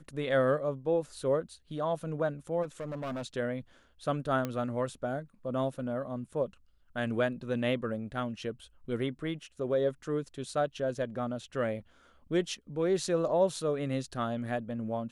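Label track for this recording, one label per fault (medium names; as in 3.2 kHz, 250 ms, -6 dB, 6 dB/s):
2.620000	3.260000	clipped -33 dBFS
4.450000	4.450000	pop -19 dBFS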